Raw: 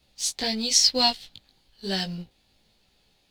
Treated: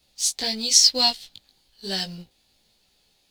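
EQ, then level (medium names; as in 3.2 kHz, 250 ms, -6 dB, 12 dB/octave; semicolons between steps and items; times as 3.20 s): tone controls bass -3 dB, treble +7 dB; -1.5 dB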